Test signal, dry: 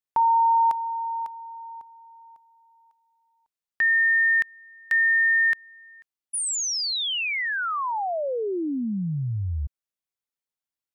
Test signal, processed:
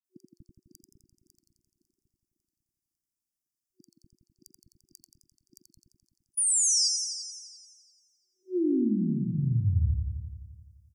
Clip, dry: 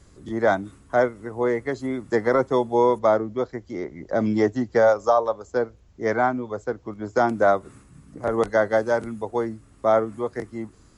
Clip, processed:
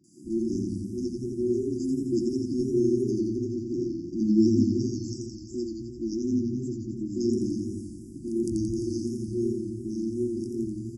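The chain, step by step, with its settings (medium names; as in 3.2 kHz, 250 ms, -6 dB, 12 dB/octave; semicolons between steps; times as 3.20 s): three bands offset in time mids, highs, lows 40/240 ms, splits 170/3300 Hz; FFT band-reject 370–4700 Hz; modulated delay 86 ms, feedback 71%, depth 101 cents, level -4.5 dB; trim +1.5 dB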